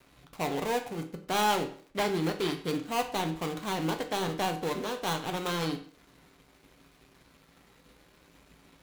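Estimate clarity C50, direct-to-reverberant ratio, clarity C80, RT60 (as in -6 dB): 11.5 dB, 4.5 dB, 15.0 dB, 0.50 s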